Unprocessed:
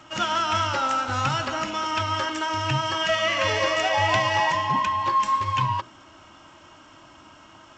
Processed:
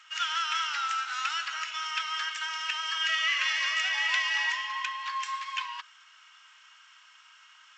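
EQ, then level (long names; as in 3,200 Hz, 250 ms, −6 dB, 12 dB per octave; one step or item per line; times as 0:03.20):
high-pass filter 1,500 Hz 24 dB per octave
high-shelf EQ 5,900 Hz −6.5 dB
0.0 dB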